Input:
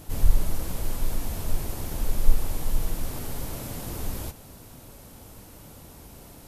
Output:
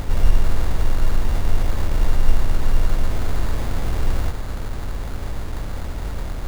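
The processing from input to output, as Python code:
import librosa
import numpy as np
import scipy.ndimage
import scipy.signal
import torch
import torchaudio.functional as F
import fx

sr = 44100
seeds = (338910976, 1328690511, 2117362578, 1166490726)

y = fx.bin_compress(x, sr, power=0.4)
y = fx.sample_hold(y, sr, seeds[0], rate_hz=2800.0, jitter_pct=0)
y = y * librosa.db_to_amplitude(1.0)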